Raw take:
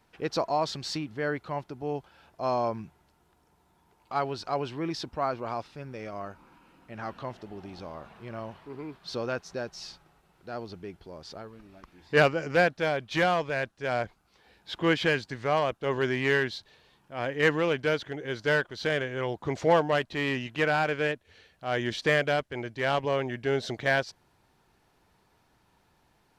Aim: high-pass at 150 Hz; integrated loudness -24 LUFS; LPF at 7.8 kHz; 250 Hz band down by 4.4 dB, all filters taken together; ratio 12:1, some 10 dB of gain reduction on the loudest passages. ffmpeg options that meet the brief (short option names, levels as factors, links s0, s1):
-af "highpass=150,lowpass=7800,equalizer=f=250:t=o:g=-5.5,acompressor=threshold=0.0447:ratio=12,volume=3.55"